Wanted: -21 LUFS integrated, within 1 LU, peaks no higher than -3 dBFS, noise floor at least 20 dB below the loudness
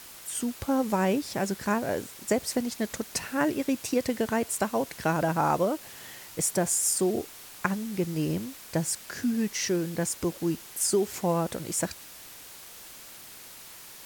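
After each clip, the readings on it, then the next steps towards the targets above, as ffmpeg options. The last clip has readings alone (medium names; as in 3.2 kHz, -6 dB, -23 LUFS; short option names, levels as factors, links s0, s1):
noise floor -47 dBFS; noise floor target -49 dBFS; loudness -28.5 LUFS; peak level -8.0 dBFS; loudness target -21.0 LUFS
-> -af "afftdn=nr=6:nf=-47"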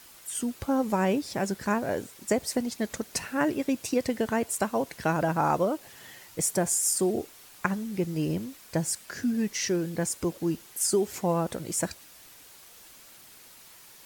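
noise floor -52 dBFS; loudness -28.5 LUFS; peak level -8.5 dBFS; loudness target -21.0 LUFS
-> -af "volume=2.37,alimiter=limit=0.708:level=0:latency=1"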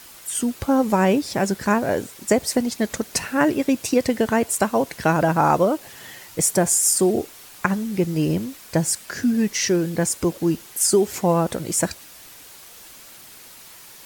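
loudness -21.0 LUFS; peak level -3.0 dBFS; noise floor -44 dBFS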